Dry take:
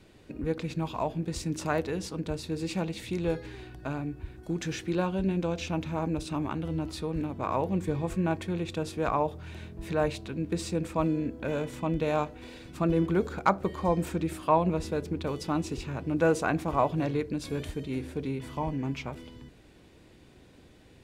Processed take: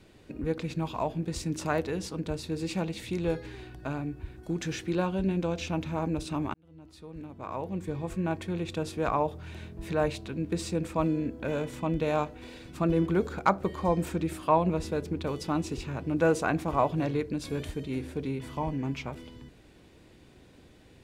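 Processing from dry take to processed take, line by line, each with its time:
6.54–8.75 s: fade in

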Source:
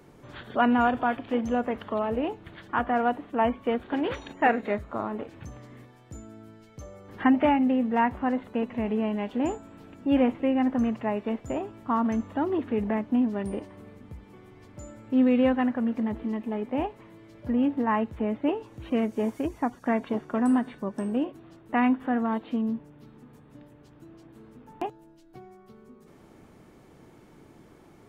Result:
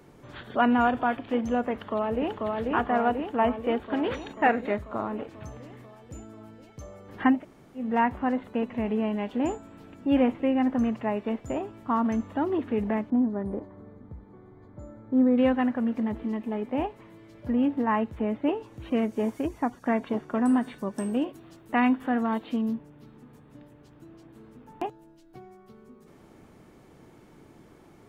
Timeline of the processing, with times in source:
1.72–2.38 s: echo throw 490 ms, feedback 70%, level -2 dB
7.37–7.82 s: room tone, crossfade 0.16 s
13.10–15.38 s: boxcar filter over 16 samples
20.61–22.75 s: treble shelf 4 kHz +10 dB

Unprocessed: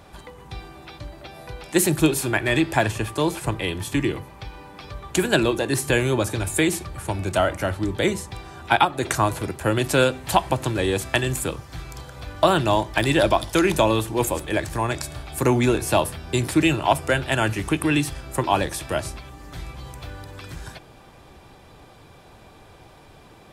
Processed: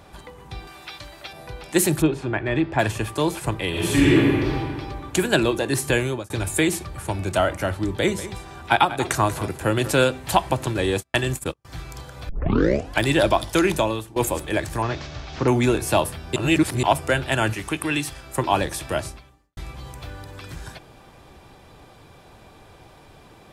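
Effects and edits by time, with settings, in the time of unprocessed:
0.67–1.33 s: tilt shelf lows -7.5 dB, about 780 Hz
2.02–2.79 s: tape spacing loss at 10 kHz 28 dB
3.69–4.58 s: reverb throw, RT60 1.9 s, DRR -8.5 dB
5.85–6.30 s: fade out equal-power
7.89–9.91 s: delay 190 ms -14 dB
10.66–11.65 s: gate -27 dBFS, range -40 dB
12.29 s: tape start 0.71 s
13.65–14.16 s: fade out linear, to -17.5 dB
14.82–15.48 s: one-bit delta coder 32 kbps, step -35 dBFS
16.36–16.83 s: reverse
17.54–18.38 s: bass shelf 500 Hz -7 dB
19.01–19.57 s: fade out quadratic

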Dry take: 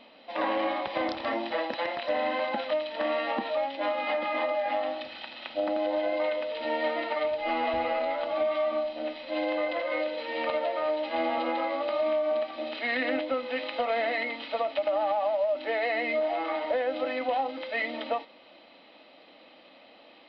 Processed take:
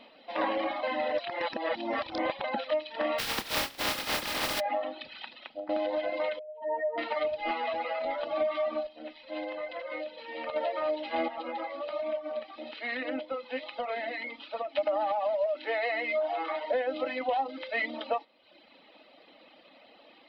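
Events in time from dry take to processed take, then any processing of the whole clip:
0.83–2.44 s: reverse
3.18–4.59 s: spectral contrast reduction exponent 0.23
5.26–5.69 s: fade out, to -14.5 dB
6.39–6.98 s: spectral contrast enhancement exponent 2.8
7.51–8.05 s: high-pass 510 Hz 6 dB/octave
8.87–10.56 s: gain -5.5 dB
11.28–14.75 s: flange 1.2 Hz, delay 4.5 ms, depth 5.9 ms, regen +72%
15.46–16.72 s: high-pass 370 Hz
whole clip: reverb removal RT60 0.95 s

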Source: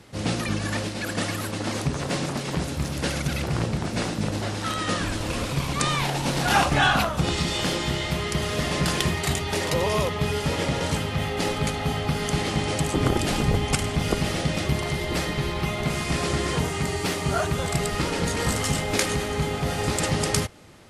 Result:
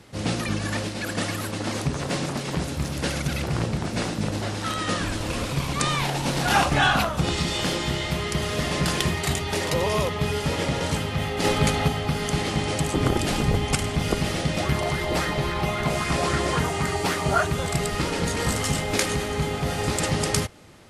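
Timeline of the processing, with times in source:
11.44–11.88 s: gain +4.5 dB
14.58–17.43 s: sweeping bell 3.7 Hz 590–1600 Hz +9 dB

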